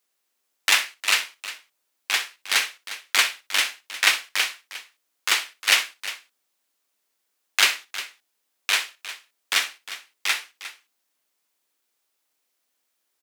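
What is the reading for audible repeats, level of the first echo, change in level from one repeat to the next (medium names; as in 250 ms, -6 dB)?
2, -15.0 dB, no regular repeats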